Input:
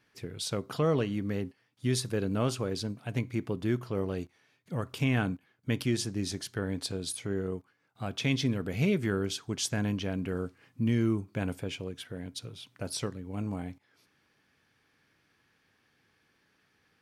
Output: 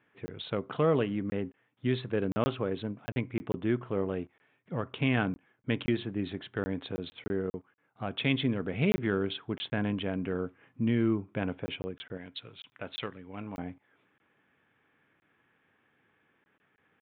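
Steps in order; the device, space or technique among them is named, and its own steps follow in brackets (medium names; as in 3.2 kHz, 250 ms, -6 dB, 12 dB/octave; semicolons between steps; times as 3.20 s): local Wiener filter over 9 samples; call with lost packets (high-pass 180 Hz 6 dB/octave; resampled via 8 kHz; lost packets of 20 ms random); 12.17–13.58 s: tilt shelf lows -7 dB, about 1.1 kHz; trim +2.5 dB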